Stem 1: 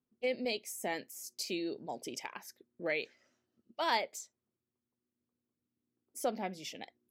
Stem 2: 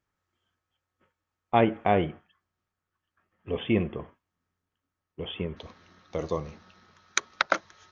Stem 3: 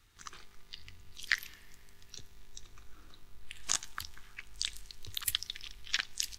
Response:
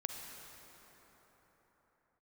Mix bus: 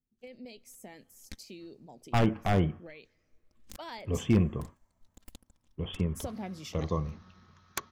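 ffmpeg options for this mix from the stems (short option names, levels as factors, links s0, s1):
-filter_complex "[0:a]acompressor=threshold=0.0178:ratio=6,volume=0.75,afade=t=in:st=3.55:d=0.64:silence=0.354813,asplit=2[s0][s1];[s1]volume=0.0794[s2];[1:a]equalizer=f=1100:w=4.8:g=6.5,aeval=exprs='0.188*(abs(mod(val(0)/0.188+3,4)-2)-1)':c=same,adelay=600,volume=0.501[s3];[2:a]aecho=1:1:3.8:0.85,aeval=exprs='0.398*(cos(1*acos(clip(val(0)/0.398,-1,1)))-cos(1*PI/2))+0.141*(cos(3*acos(clip(val(0)/0.398,-1,1)))-cos(3*PI/2))+0.0501*(cos(4*acos(clip(val(0)/0.398,-1,1)))-cos(4*PI/2))+0.00708*(cos(8*acos(clip(val(0)/0.398,-1,1)))-cos(8*PI/2))':c=same,volume=0.133[s4];[3:a]atrim=start_sample=2205[s5];[s2][s5]afir=irnorm=-1:irlink=0[s6];[s0][s3][s4][s6]amix=inputs=4:normalize=0,bass=f=250:g=13,treble=f=4000:g=2"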